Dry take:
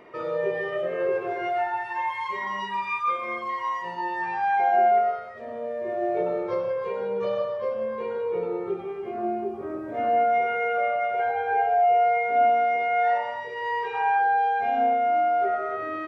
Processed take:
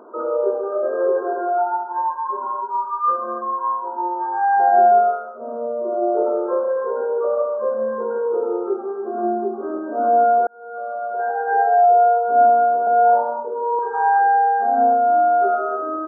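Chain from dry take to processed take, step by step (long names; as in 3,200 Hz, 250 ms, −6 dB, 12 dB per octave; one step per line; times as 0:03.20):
0:10.47–0:11.68: fade in
brick-wall band-pass 210–1,600 Hz
0:12.87–0:13.79: spectral tilt −4 dB per octave
level +6.5 dB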